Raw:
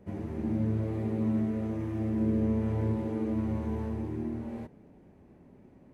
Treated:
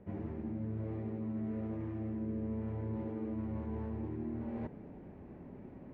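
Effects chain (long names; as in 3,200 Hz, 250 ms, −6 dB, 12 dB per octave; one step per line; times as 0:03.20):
low-pass filter 2,500 Hz 12 dB per octave
reversed playback
downward compressor 5 to 1, threshold −43 dBFS, peak gain reduction 16.5 dB
reversed playback
level +5.5 dB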